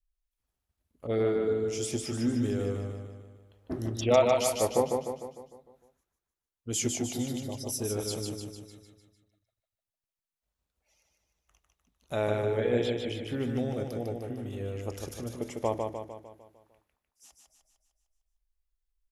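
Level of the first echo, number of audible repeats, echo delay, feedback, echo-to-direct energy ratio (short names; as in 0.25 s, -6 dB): -4.0 dB, 6, 0.151 s, 52%, -2.5 dB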